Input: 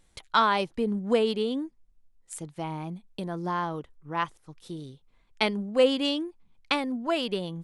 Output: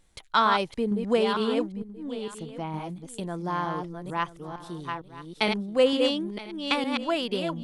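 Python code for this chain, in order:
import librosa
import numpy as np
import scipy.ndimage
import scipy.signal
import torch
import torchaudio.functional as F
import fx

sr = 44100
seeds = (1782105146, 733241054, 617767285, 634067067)

y = fx.reverse_delay(x, sr, ms=456, wet_db=-5)
y = fx.high_shelf(y, sr, hz=fx.line((1.59, 9400.0), (2.72, 6000.0)), db=-11.0, at=(1.59, 2.72), fade=0.02)
y = y + 10.0 ** (-16.5 / 20.0) * np.pad(y, (int(978 * sr / 1000.0), 0))[:len(y)]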